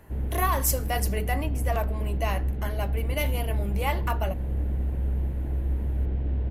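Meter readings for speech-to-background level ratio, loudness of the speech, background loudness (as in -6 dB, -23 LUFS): -1.5 dB, -31.0 LUFS, -29.5 LUFS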